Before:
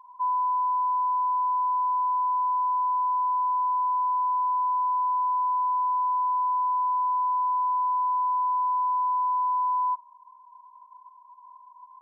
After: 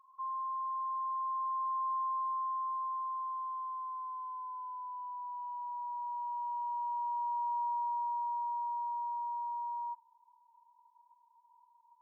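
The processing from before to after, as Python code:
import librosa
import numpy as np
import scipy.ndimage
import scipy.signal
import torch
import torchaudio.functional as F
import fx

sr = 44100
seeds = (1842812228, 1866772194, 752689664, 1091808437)

y = fx.doppler_pass(x, sr, speed_mps=18, closest_m=20.0, pass_at_s=4.84)
y = fx.peak_eq(y, sr, hz=900.0, db=-8.0, octaves=1.2)
y = fx.over_compress(y, sr, threshold_db=-41.0, ratio=-1.0)
y = y * librosa.db_to_amplitude(4.0)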